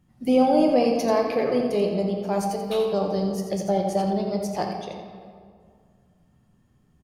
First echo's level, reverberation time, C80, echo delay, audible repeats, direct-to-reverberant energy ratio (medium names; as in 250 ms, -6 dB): -8.5 dB, 2.1 s, 4.5 dB, 86 ms, 1, 1.5 dB